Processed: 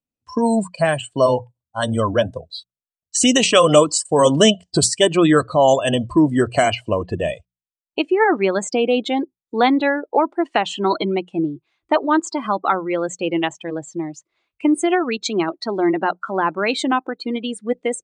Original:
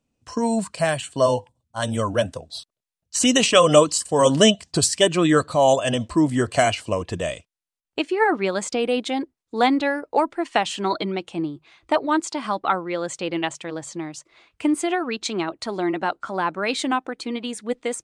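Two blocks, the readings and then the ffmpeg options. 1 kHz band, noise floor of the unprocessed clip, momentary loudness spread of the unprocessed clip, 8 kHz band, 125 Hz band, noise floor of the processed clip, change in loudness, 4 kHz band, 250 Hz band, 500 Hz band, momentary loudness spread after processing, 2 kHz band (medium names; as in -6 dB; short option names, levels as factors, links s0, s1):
+3.0 dB, -85 dBFS, 13 LU, +2.0 dB, +2.5 dB, under -85 dBFS, +3.0 dB, +2.0 dB, +4.0 dB, +3.5 dB, 11 LU, +2.5 dB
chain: -filter_complex "[0:a]bandreject=f=60:t=h:w=6,bandreject=f=120:t=h:w=6,bandreject=f=180:t=h:w=6,afftdn=nr=21:nf=-32,adynamicequalizer=threshold=0.0141:dfrequency=370:dqfactor=4.9:tfrequency=370:tqfactor=4.9:attack=5:release=100:ratio=0.375:range=1.5:mode=boostabove:tftype=bell,asplit=2[s0][s1];[s1]alimiter=limit=0.251:level=0:latency=1:release=262,volume=0.841[s2];[s0][s2]amix=inputs=2:normalize=0,volume=0.891"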